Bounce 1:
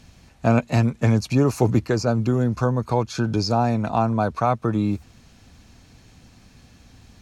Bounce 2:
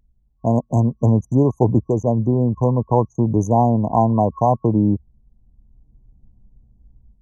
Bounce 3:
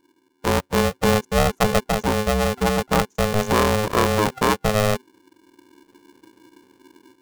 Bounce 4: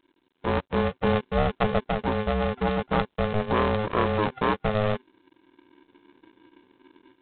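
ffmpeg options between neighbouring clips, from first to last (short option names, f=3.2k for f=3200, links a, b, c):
-af "anlmdn=158,afftfilt=real='re*(1-between(b*sr/4096,1100,5900))':imag='im*(1-between(b*sr/4096,1100,5900))':win_size=4096:overlap=0.75,dynaudnorm=f=510:g=3:m=12dB,volume=-1dB"
-af "aeval=exprs='val(0)*sgn(sin(2*PI*320*n/s))':c=same,volume=-3dB"
-af "volume=-4.5dB" -ar 8000 -c:a adpcm_g726 -b:a 24k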